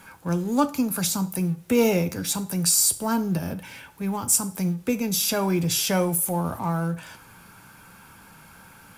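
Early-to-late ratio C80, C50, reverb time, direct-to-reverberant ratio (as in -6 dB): 21.0 dB, 17.0 dB, 0.45 s, 11.0 dB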